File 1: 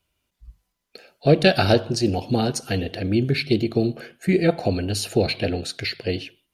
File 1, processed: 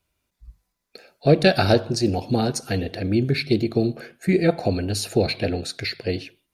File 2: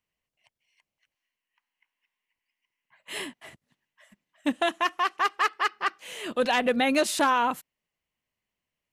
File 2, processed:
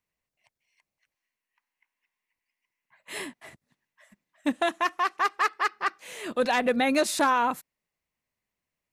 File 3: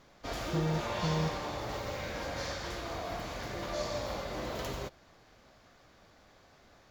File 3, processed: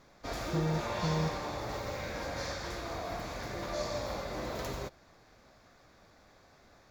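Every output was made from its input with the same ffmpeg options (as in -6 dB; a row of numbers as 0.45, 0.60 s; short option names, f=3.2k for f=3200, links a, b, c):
-af "equalizer=f=3k:t=o:w=0.22:g=-8"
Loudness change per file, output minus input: 0.0, 0.0, 0.0 LU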